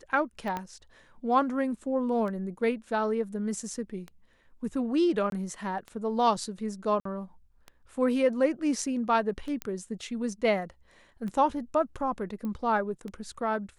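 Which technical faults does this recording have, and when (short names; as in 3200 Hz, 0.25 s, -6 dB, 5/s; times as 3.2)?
tick 33 1/3 rpm
0.57 pop -19 dBFS
5.3–5.32 gap 22 ms
7–7.05 gap 54 ms
9.62 pop -17 dBFS
12.45 pop -25 dBFS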